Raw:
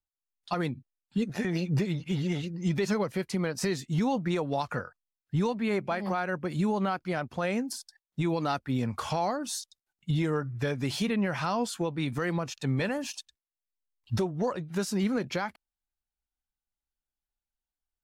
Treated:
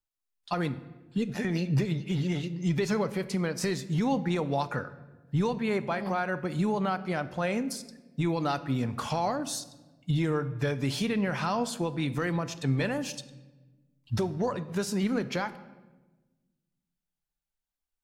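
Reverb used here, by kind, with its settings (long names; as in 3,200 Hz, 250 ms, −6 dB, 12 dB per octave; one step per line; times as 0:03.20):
rectangular room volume 760 cubic metres, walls mixed, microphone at 0.36 metres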